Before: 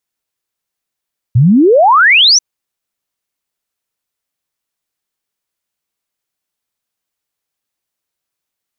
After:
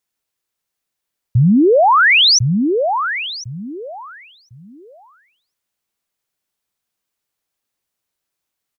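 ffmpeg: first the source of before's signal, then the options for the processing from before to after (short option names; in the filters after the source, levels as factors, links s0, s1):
-f lavfi -i "aevalsrc='0.631*clip(min(t,1.04-t)/0.01,0,1)*sin(2*PI*110*1.04/log(6200/110)*(exp(log(6200/110)*t/1.04)-1))':d=1.04:s=44100"
-filter_complex "[0:a]alimiter=limit=0.422:level=0:latency=1:release=62,asplit=2[s0][s1];[s1]adelay=1052,lowpass=f=1100:p=1,volume=0.596,asplit=2[s2][s3];[s3]adelay=1052,lowpass=f=1100:p=1,volume=0.24,asplit=2[s4][s5];[s5]adelay=1052,lowpass=f=1100:p=1,volume=0.24[s6];[s0][s2][s4][s6]amix=inputs=4:normalize=0"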